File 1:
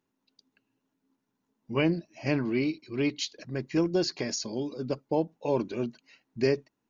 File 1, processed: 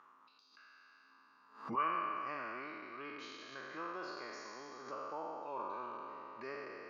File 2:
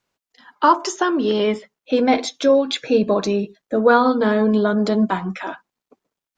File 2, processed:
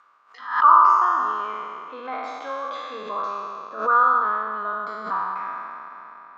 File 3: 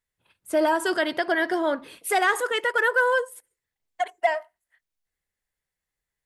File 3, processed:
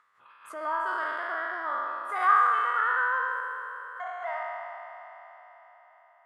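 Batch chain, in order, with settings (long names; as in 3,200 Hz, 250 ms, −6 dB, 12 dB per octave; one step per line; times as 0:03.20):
peak hold with a decay on every bin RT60 2.43 s
in parallel at −0.5 dB: upward compression, threshold −19 dBFS
on the sum: resonant band-pass 1,200 Hz, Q 11
background raised ahead of every attack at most 120 dB per second
level −1 dB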